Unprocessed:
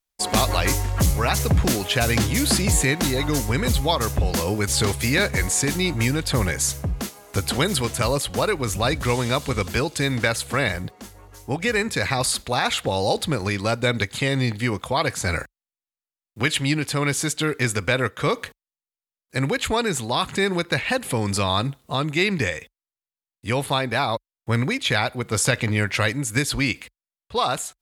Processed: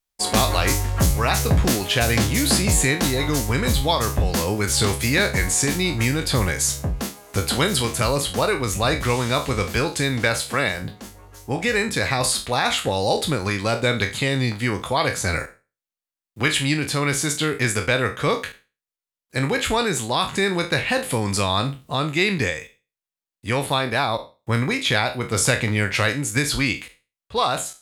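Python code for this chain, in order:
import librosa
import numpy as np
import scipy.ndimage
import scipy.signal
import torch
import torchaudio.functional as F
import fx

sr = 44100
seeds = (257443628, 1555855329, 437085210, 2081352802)

y = fx.spec_trails(x, sr, decay_s=0.3)
y = fx.highpass(y, sr, hz=150.0, slope=6, at=(10.41, 10.82))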